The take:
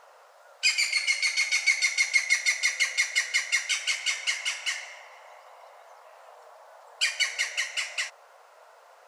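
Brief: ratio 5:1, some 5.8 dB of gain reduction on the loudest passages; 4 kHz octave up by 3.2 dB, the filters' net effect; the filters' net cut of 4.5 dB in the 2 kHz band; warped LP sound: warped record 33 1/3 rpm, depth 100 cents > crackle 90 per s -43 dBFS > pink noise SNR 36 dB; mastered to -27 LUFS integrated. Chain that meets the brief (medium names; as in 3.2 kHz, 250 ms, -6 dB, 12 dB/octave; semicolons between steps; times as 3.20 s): peaking EQ 2 kHz -6.5 dB; peaking EQ 4 kHz +6 dB; compression 5:1, threshold -26 dBFS; warped record 33 1/3 rpm, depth 100 cents; crackle 90 per s -43 dBFS; pink noise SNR 36 dB; trim +2.5 dB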